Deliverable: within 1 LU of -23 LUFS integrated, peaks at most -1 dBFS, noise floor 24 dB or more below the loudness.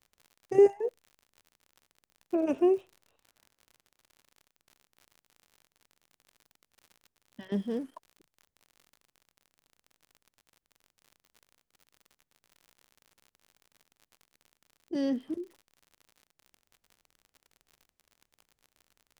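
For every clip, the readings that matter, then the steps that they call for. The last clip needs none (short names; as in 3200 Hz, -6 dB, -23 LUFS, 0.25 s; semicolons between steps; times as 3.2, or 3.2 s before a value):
ticks 59/s; loudness -29.5 LUFS; peak -11.5 dBFS; loudness target -23.0 LUFS
-> de-click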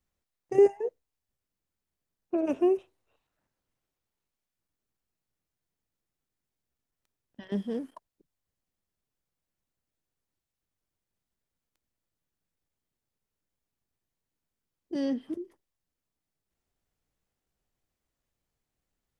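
ticks 0.16/s; loudness -29.0 LUFS; peak -11.5 dBFS; loudness target -23.0 LUFS
-> gain +6 dB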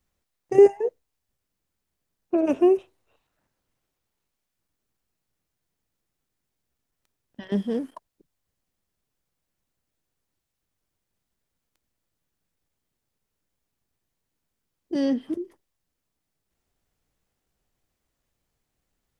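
loudness -23.0 LUFS; peak -5.5 dBFS; noise floor -82 dBFS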